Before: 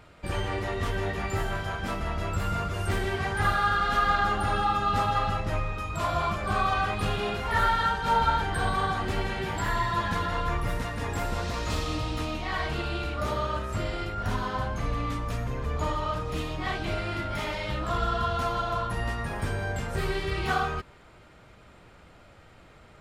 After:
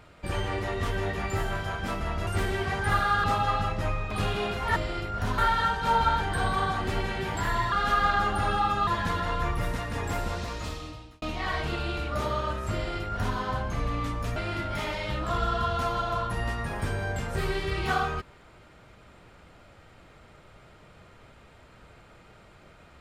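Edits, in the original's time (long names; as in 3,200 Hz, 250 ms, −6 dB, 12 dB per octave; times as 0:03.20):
0:02.27–0:02.80: remove
0:03.77–0:04.92: move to 0:09.93
0:05.79–0:06.94: remove
0:11.23–0:12.28: fade out
0:13.80–0:14.42: duplicate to 0:07.59
0:15.42–0:16.96: remove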